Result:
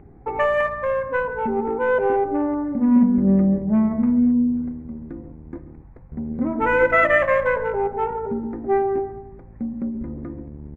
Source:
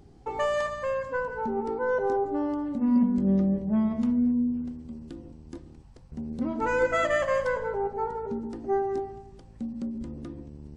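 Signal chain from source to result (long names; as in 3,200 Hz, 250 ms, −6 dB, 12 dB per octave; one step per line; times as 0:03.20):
adaptive Wiener filter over 15 samples
high shelf with overshoot 3,200 Hz −12 dB, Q 3
repeating echo 135 ms, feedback 40%, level −21 dB
level +6.5 dB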